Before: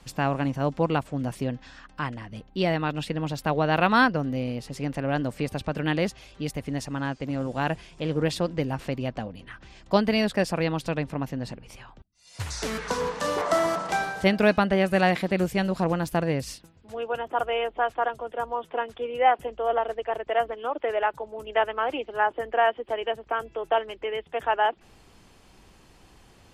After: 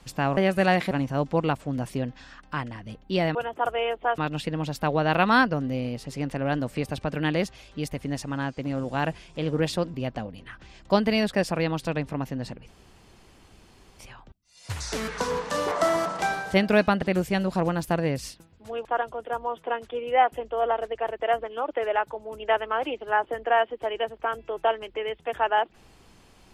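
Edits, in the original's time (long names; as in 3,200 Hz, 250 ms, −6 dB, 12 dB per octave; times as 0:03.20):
0:08.57–0:08.95: remove
0:11.69: splice in room tone 1.31 s
0:14.72–0:15.26: move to 0:00.37
0:17.09–0:17.92: move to 0:02.81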